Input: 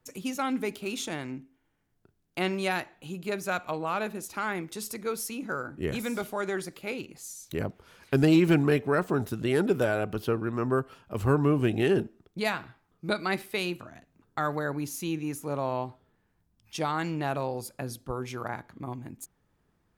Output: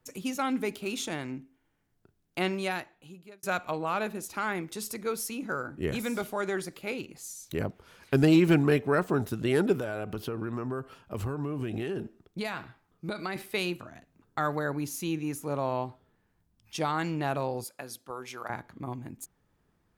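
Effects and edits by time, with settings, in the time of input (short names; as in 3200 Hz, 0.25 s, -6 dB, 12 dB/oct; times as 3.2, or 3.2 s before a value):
2.4–3.43 fade out
9.73–13.36 compressor 12:1, threshold -28 dBFS
17.64–18.5 HPF 770 Hz 6 dB/oct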